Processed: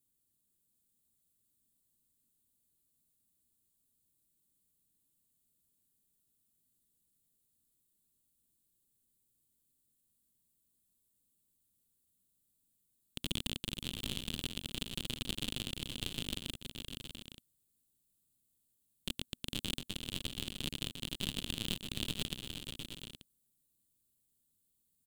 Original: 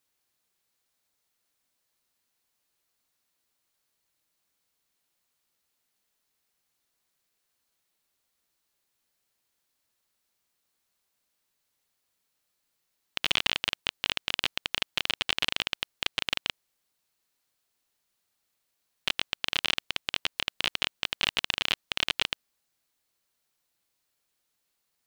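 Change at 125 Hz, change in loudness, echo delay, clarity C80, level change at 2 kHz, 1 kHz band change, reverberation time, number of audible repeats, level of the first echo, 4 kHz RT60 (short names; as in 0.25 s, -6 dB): +6.0 dB, -10.5 dB, 0.473 s, none, -16.0 dB, -17.0 dB, none, 5, -7.5 dB, none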